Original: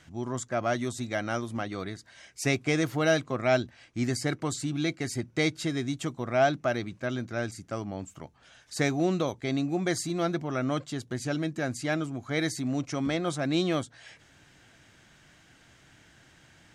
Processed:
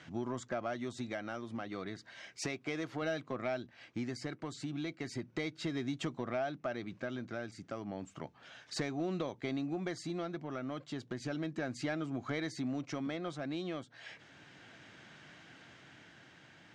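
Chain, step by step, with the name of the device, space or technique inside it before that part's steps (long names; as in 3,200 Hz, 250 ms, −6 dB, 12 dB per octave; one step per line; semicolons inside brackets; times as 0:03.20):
AM radio (band-pass filter 140–4,400 Hz; downward compressor 6 to 1, threshold −36 dBFS, peak gain reduction 17 dB; soft clipping −27 dBFS, distortion −22 dB; amplitude tremolo 0.33 Hz, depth 35%)
0:02.46–0:03.02: low-shelf EQ 170 Hz −7.5 dB
level +3.5 dB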